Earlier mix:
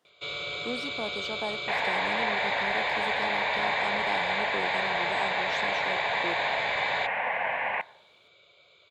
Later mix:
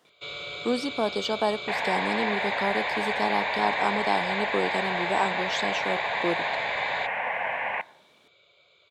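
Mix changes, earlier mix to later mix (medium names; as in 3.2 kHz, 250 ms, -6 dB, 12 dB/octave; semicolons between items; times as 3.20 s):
speech +9.0 dB; first sound: send off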